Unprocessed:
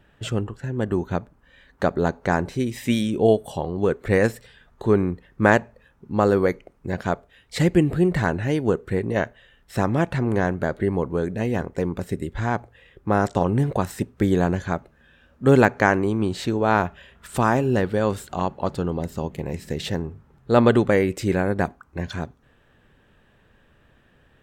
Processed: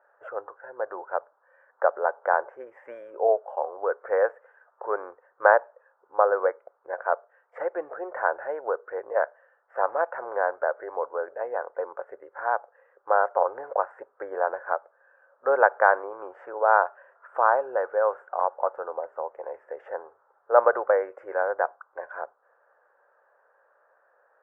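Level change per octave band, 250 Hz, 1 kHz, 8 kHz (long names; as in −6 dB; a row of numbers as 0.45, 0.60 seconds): −27.0 dB, +1.5 dB, below −40 dB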